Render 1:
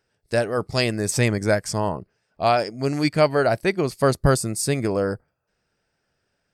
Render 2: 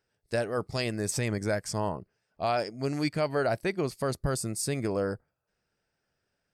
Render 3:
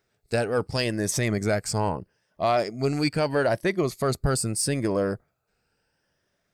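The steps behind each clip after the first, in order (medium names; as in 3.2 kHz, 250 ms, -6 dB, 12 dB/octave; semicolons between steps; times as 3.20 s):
peak limiter -11.5 dBFS, peak gain reduction 7 dB; trim -6.5 dB
drifting ripple filter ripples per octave 1.2, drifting +0.77 Hz, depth 6 dB; in parallel at -7 dB: saturation -28 dBFS, distortion -10 dB; on the sum: trim +2.5 dB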